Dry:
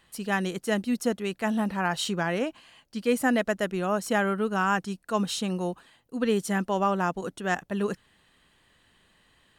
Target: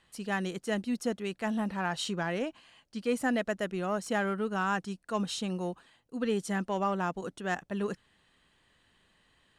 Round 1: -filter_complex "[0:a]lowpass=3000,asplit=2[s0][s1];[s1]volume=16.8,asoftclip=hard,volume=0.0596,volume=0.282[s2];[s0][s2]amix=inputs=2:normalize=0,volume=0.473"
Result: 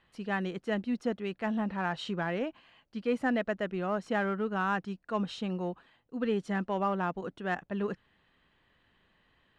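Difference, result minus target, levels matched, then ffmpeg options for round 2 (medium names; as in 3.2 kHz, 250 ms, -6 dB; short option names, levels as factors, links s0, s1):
8 kHz band -14.5 dB
-filter_complex "[0:a]lowpass=9700,asplit=2[s0][s1];[s1]volume=16.8,asoftclip=hard,volume=0.0596,volume=0.282[s2];[s0][s2]amix=inputs=2:normalize=0,volume=0.473"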